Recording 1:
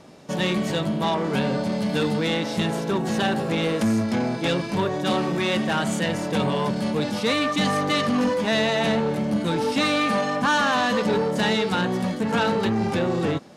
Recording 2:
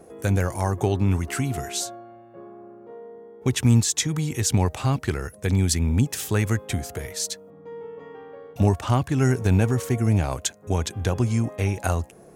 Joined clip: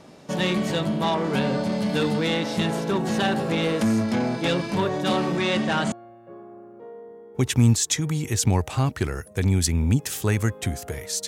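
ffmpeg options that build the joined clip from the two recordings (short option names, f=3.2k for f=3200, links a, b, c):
-filter_complex "[0:a]asettb=1/sr,asplit=3[a][b][c];[a]atrim=end=5.364[d];[b]atrim=start=5.36:end=5.92,asetpts=PTS-STARTPTS,afade=t=in:d=0.004:c=qsin,afade=t=out:st=0.556:d=0.004:c=qsin,lowpass=f=9.1k:w=0.5412,lowpass=f=9.1k:w=1.3066[e];[c]atrim=start=5.916[f];[d][e]acrossfade=d=0.004:c1=hsin:c2=qsin[g];[g][f]acrossfade=d=0.004:c1=qsin:c2=hsin,apad=whole_dur=11.27,atrim=end=11.27,atrim=end=5.922[h];[1:a]atrim=start=1.988:end=7.34[i];[h][i]acrossfade=d=0.004:c1=hsin:c2=hsin"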